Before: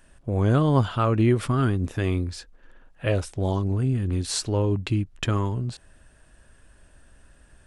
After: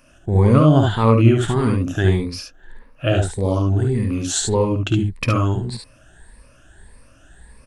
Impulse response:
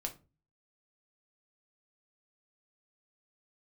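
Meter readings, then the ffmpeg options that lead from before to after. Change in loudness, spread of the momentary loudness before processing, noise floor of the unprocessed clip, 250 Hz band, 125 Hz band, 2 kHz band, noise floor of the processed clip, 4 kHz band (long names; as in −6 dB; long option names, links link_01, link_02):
+6.5 dB, 9 LU, −56 dBFS, +6.5 dB, +6.0 dB, +6.0 dB, −51 dBFS, +5.5 dB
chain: -filter_complex "[0:a]afftfilt=real='re*pow(10,14/40*sin(2*PI*(0.92*log(max(b,1)*sr/1024/100)/log(2)-(1.7)*(pts-256)/sr)))':imag='im*pow(10,14/40*sin(2*PI*(0.92*log(max(b,1)*sr/1024/100)/log(2)-(1.7)*(pts-256)/sr)))':win_size=1024:overlap=0.75,asplit=2[link_01][link_02];[link_02]aecho=0:1:53|71:0.355|0.596[link_03];[link_01][link_03]amix=inputs=2:normalize=0,volume=3dB"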